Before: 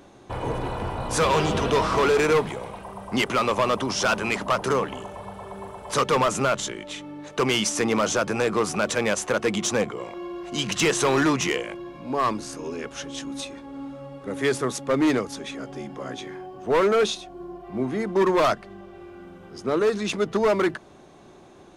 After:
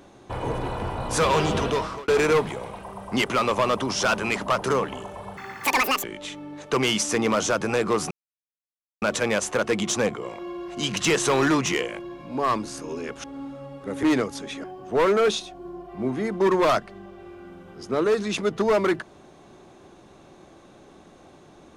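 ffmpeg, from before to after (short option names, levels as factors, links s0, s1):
-filter_complex "[0:a]asplit=8[s0][s1][s2][s3][s4][s5][s6][s7];[s0]atrim=end=2.08,asetpts=PTS-STARTPTS,afade=t=out:st=1.6:d=0.48[s8];[s1]atrim=start=2.08:end=5.374,asetpts=PTS-STARTPTS,afade=t=in:d=0.004:c=hsin[s9];[s2]atrim=start=5.37:end=6.7,asetpts=PTS-STARTPTS,asetrate=87759,aresample=44100[s10];[s3]atrim=start=6.696:end=8.77,asetpts=PTS-STARTPTS,afade=t=out:st=2.07:d=0.004:c=hsin,apad=pad_dur=0.91[s11];[s4]atrim=start=8.77:end=12.992,asetpts=PTS-STARTPTS,afade=t=in:d=0.004:c=hsin[s12];[s5]atrim=start=13.638:end=14.432[s13];[s6]atrim=start=14.998:end=15.612[s14];[s7]atrim=start=16.388[s15];[s8][s9]concat=n=2:v=0:a=1[s16];[s16][s10]acrossfade=d=0.004:c1=hsin:c2=hsin[s17];[s11][s12]concat=n=2:v=0:a=1[s18];[s17][s18]acrossfade=d=0.004:c1=hsin:c2=hsin[s19];[s19][s13]acrossfade=d=0.004:c1=hsin:c2=hsin[s20];[s20][s14]acrossfade=d=0.004:c1=hsin:c2=hsin[s21];[s21][s15]acrossfade=d=0.004:c1=hsin:c2=hsin"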